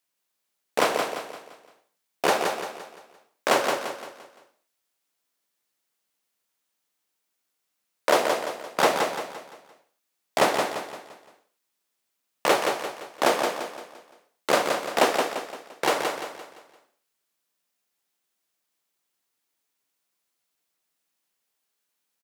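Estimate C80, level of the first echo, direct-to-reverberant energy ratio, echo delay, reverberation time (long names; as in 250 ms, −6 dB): no reverb audible, −5.0 dB, no reverb audible, 172 ms, no reverb audible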